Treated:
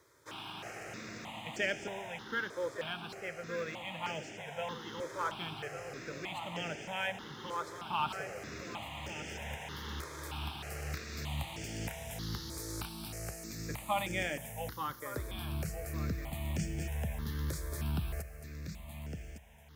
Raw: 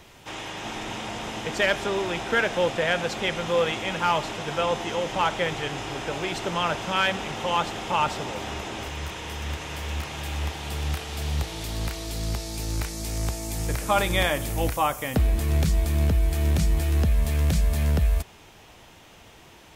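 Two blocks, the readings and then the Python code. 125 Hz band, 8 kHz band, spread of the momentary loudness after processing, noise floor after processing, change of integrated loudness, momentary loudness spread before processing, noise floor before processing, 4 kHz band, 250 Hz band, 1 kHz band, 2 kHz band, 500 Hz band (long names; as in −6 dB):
−13.5 dB, −10.5 dB, 9 LU, −49 dBFS, −13.0 dB, 9 LU, −50 dBFS, −12.5 dB, −11.5 dB, −12.5 dB, −11.0 dB, −13.5 dB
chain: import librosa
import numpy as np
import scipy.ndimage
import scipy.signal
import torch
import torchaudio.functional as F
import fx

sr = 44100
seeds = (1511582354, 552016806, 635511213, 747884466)

y = fx.law_mismatch(x, sr, coded='A')
y = scipy.signal.sosfilt(scipy.signal.butter(2, 110.0, 'highpass', fs=sr, output='sos'), y)
y = fx.echo_feedback(y, sr, ms=1159, feedback_pct=21, wet_db=-10.5)
y = fx.rider(y, sr, range_db=4, speed_s=2.0)
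y = fx.phaser_held(y, sr, hz=3.2, low_hz=760.0, high_hz=3900.0)
y = y * 10.0 ** (-8.0 / 20.0)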